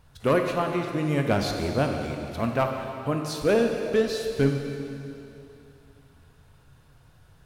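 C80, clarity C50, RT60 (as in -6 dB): 5.0 dB, 4.0 dB, 2.8 s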